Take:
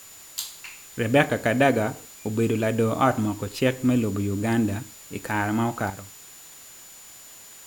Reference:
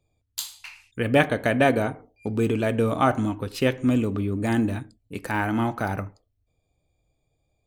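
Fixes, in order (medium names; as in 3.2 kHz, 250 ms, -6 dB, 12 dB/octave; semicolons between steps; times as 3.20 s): band-stop 7 kHz, Q 30; noise reduction 27 dB, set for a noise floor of -46 dBFS; gain correction +11 dB, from 5.90 s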